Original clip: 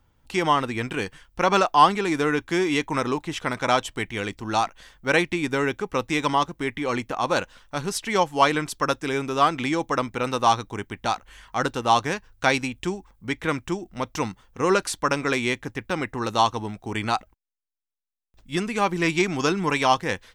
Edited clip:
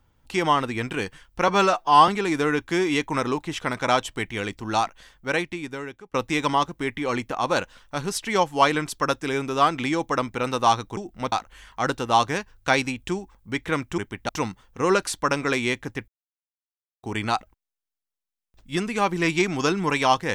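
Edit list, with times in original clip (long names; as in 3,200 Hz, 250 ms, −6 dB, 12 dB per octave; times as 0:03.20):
0:01.48–0:01.88: time-stretch 1.5×
0:04.58–0:05.94: fade out, to −21 dB
0:10.77–0:11.08: swap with 0:13.74–0:14.09
0:15.88–0:16.83: silence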